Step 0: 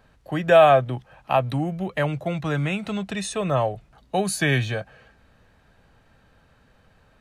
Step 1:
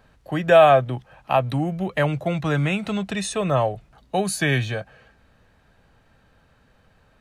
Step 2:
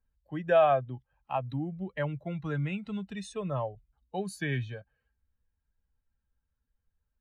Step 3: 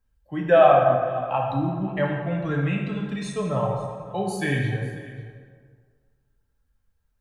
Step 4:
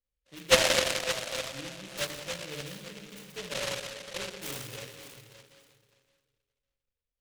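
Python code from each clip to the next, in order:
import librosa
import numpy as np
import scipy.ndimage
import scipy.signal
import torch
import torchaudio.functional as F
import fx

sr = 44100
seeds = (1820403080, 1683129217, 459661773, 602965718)

y1 = fx.rider(x, sr, range_db=3, speed_s=2.0)
y2 = fx.bin_expand(y1, sr, power=1.5)
y2 = fx.high_shelf(y2, sr, hz=3500.0, db=-10.0)
y2 = F.gain(torch.from_numpy(y2), -8.0).numpy()
y3 = y2 + 10.0 ** (-19.0 / 20.0) * np.pad(y2, (int(541 * sr / 1000.0), 0))[:len(y2)]
y3 = fx.rev_plate(y3, sr, seeds[0], rt60_s=1.8, hf_ratio=0.55, predelay_ms=0, drr_db=-1.0)
y3 = F.gain(torch.from_numpy(y3), 5.0).numpy()
y4 = fx.formant_cascade(y3, sr, vowel='e')
y4 = fx.echo_feedback(y4, sr, ms=570, feedback_pct=17, wet_db=-14.0)
y4 = fx.noise_mod_delay(y4, sr, seeds[1], noise_hz=2600.0, depth_ms=0.31)
y4 = F.gain(torch.from_numpy(y4), -1.5).numpy()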